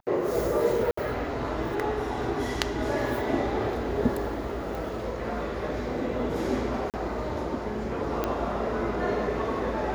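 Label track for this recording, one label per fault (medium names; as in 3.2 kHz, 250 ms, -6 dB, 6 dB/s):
0.910000	0.970000	dropout 64 ms
4.750000	4.750000	pop
6.900000	6.940000	dropout 38 ms
8.240000	8.240000	pop -13 dBFS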